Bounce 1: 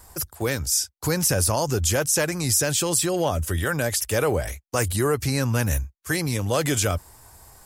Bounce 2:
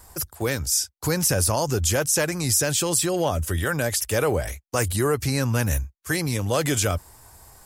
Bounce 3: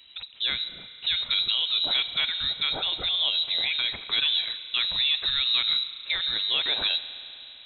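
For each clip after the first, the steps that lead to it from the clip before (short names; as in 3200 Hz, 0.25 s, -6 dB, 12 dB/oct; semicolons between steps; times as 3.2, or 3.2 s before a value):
nothing audible
wow and flutter 21 cents; spring tank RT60 3.3 s, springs 35 ms, chirp 40 ms, DRR 11.5 dB; inverted band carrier 3900 Hz; gain -3 dB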